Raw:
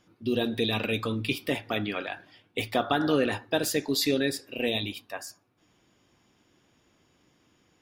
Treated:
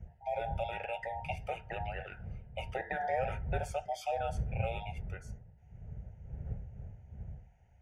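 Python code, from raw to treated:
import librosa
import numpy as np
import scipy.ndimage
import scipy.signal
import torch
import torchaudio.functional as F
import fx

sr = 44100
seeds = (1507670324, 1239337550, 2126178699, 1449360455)

y = fx.band_invert(x, sr, width_hz=1000)
y = fx.dmg_wind(y, sr, seeds[0], corner_hz=94.0, level_db=-31.0)
y = scipy.signal.sosfilt(scipy.signal.butter(2, 46.0, 'highpass', fs=sr, output='sos'), y)
y = fx.air_absorb(y, sr, metres=81.0)
y = fx.fixed_phaser(y, sr, hz=1100.0, stages=6)
y = y * librosa.db_to_amplitude(-7.5)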